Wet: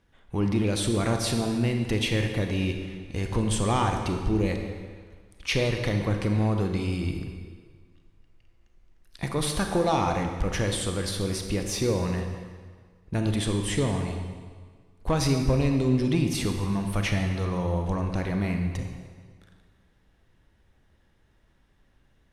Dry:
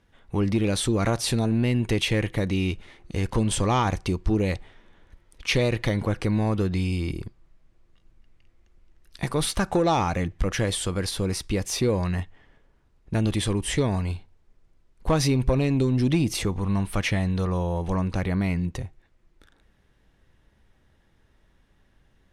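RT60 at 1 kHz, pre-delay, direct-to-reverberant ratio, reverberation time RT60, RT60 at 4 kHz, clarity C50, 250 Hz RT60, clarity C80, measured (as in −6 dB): 1.7 s, 29 ms, 4.0 dB, 1.6 s, 1.4 s, 5.0 dB, 1.6 s, 6.5 dB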